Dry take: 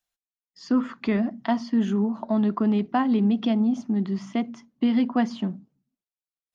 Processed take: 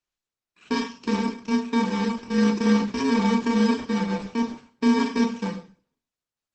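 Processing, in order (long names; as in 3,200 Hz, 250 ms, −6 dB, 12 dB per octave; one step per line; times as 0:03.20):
samples in bit-reversed order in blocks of 64 samples
high-frequency loss of the air 94 metres
four-comb reverb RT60 0.36 s, combs from 26 ms, DRR 2.5 dB
Opus 12 kbit/s 48,000 Hz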